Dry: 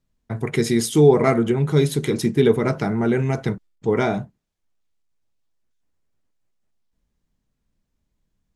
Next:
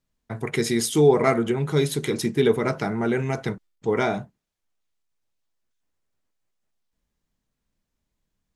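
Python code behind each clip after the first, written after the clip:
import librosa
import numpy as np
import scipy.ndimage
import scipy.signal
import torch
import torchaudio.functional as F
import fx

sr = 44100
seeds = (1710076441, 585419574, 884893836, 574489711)

y = fx.low_shelf(x, sr, hz=370.0, db=-6.5)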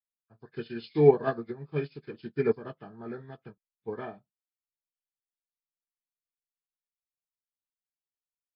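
y = fx.freq_compress(x, sr, knee_hz=1000.0, ratio=1.5)
y = fx.upward_expand(y, sr, threshold_db=-38.0, expansion=2.5)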